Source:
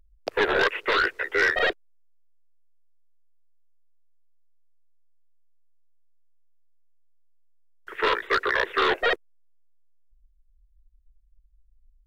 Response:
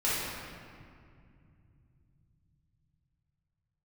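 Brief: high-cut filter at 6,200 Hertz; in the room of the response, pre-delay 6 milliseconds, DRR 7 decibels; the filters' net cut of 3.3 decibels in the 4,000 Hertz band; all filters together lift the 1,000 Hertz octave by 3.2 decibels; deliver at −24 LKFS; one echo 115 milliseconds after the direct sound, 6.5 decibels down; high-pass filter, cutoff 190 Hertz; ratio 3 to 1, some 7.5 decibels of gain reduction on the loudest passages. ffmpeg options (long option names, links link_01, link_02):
-filter_complex "[0:a]highpass=190,lowpass=6200,equalizer=frequency=1000:width_type=o:gain=4.5,equalizer=frequency=4000:width_type=o:gain=-4,acompressor=threshold=-27dB:ratio=3,aecho=1:1:115:0.473,asplit=2[link_01][link_02];[1:a]atrim=start_sample=2205,adelay=6[link_03];[link_02][link_03]afir=irnorm=-1:irlink=0,volume=-17.5dB[link_04];[link_01][link_04]amix=inputs=2:normalize=0,volume=4dB"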